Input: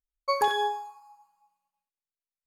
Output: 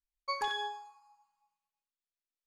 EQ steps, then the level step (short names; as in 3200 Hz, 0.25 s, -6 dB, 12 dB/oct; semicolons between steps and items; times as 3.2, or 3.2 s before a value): LPF 6300 Hz 12 dB/oct; bell 130 Hz -6 dB 1.5 oct; bell 510 Hz -11.5 dB 1.9 oct; -3.0 dB